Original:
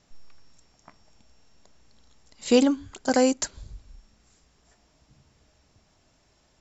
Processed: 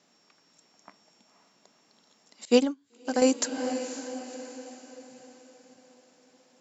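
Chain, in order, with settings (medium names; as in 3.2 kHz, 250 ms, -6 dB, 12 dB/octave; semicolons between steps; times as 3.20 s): high-pass 190 Hz 24 dB/octave; on a send: echo that smears into a reverb 521 ms, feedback 48%, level -10 dB; 2.45–3.22 s: on the sum: upward expansion 2.5:1, over -29 dBFS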